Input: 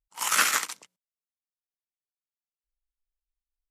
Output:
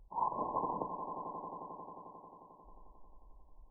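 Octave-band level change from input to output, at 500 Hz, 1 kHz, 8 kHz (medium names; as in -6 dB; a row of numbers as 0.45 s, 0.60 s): +4.5 dB, -2.5 dB, under -40 dB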